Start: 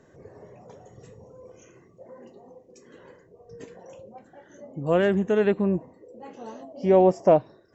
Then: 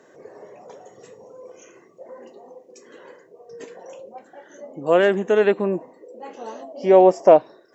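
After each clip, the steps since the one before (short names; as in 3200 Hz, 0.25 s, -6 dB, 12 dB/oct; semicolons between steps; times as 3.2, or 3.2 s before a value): HPF 340 Hz 12 dB/oct; gain +6.5 dB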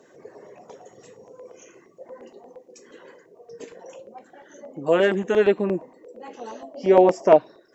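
LFO notch saw down 8.6 Hz 360–2000 Hz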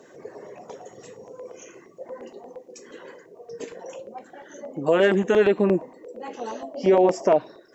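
limiter -13.5 dBFS, peak gain reduction 11 dB; gain +4 dB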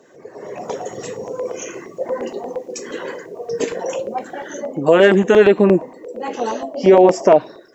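AGC gain up to 15.5 dB; gain -1 dB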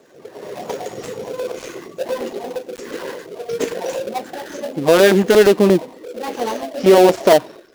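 switching dead time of 0.17 ms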